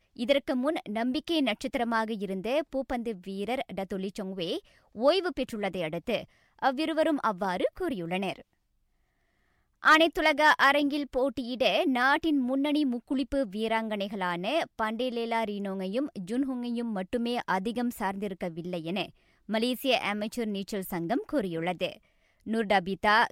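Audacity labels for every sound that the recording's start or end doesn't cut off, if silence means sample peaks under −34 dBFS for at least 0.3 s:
4.980000	6.230000	sound
6.620000	8.360000	sound
9.840000	19.050000	sound
19.490000	21.950000	sound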